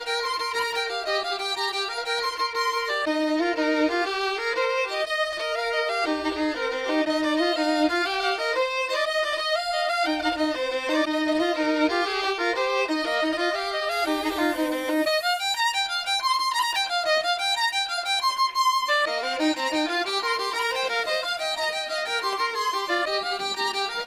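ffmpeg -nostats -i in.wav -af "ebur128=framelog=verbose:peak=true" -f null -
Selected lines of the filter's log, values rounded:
Integrated loudness:
  I:         -24.2 LUFS
  Threshold: -34.2 LUFS
Loudness range:
  LRA:         2.2 LU
  Threshold: -44.1 LUFS
  LRA low:   -25.1 LUFS
  LRA high:  -22.9 LUFS
True peak:
  Peak:      -10.8 dBFS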